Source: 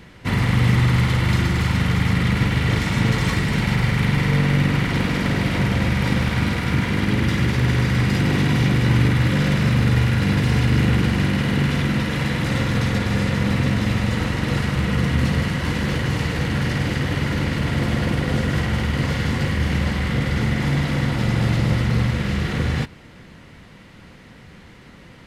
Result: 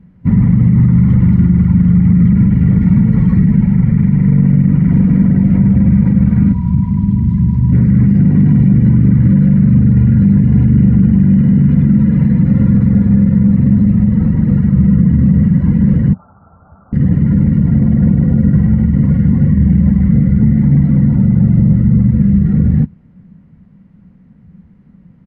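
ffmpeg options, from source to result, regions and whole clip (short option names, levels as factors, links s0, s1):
-filter_complex "[0:a]asettb=1/sr,asplit=3[s0][s1][s2];[s0]atrim=end=6.524[s3];[s1]atrim=start=6.52:end=7.72,asetpts=PTS-STARTPTS,afade=t=in:d=0.004:c=qsin,afade=t=out:st=1.196:d=0.004:c=qsin,lowpass=9100,equalizer=f=980:w=7.1:g=15,acrossover=split=130|3000[s4][s5][s6];[s5]acompressor=threshold=0.0316:ratio=4:attack=3.2:release=140:knee=2.83:detection=peak[s7];[s4][s7][s6]amix=inputs=3:normalize=0[s8];[s2]atrim=start=7.716[s9];[s3][s8]acrossfade=d=0.004:c1=hsin:c2=qsin[s10];[s10][s9]acrossfade=d=0.004:c1=qsin:c2=hsin,asettb=1/sr,asplit=3[s11][s12][s13];[s11]atrim=end=16.134[s14];[s12]atrim=start=16.13:end=16.93,asetpts=PTS-STARTPTS,afade=t=in:d=0.004:c=qsin,afade=t=out:st=0.796:d=0.004:c=qsin,lowpass=f=3100:t=q:w=0.5098,lowpass=f=3100:t=q:w=0.6013,lowpass=f=3100:t=q:w=0.9,lowpass=f=3100:t=q:w=2.563,afreqshift=-3600,asuperstop=centerf=2700:order=20:qfactor=0.75,equalizer=f=83:w=0.74:g=12[s15];[s13]atrim=start=16.926[s16];[s14][s15]acrossfade=d=0.004:c1=hsin:c2=qsin[s17];[s17][s16]acrossfade=d=0.004:c1=qsin:c2=hsin,afftdn=nr=12:nf=-25,firequalizer=gain_entry='entry(130,0);entry(180,10);entry(330,-9);entry(3500,-27)':delay=0.05:min_phase=1,alimiter=level_in=3.55:limit=0.891:release=50:level=0:latency=1,volume=0.891"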